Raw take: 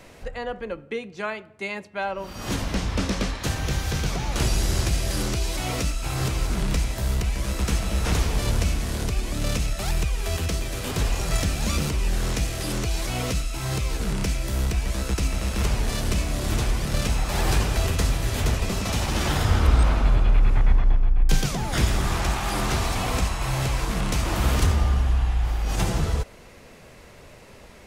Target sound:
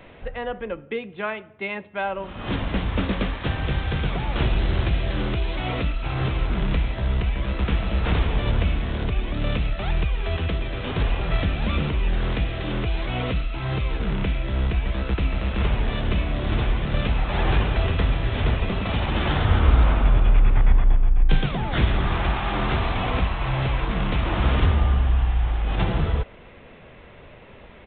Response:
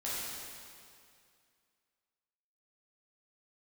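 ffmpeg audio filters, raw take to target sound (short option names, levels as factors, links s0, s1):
-af "aresample=8000,aresample=44100,volume=1.19"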